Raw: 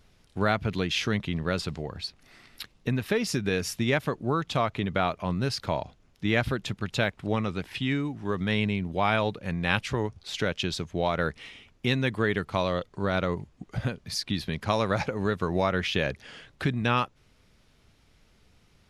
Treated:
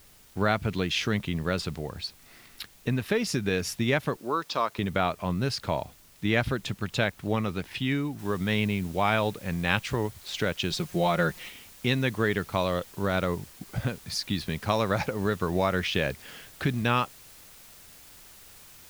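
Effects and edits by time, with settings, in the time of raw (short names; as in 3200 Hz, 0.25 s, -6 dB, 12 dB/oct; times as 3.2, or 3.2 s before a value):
4.17–4.79 speaker cabinet 340–6700 Hz, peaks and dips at 740 Hz -6 dB, 1000 Hz +5 dB, 2100 Hz -6 dB, 3100 Hz -5 dB, 5000 Hz +9 dB
8.19 noise floor step -57 dB -51 dB
10.7–11.5 comb 5.6 ms, depth 78%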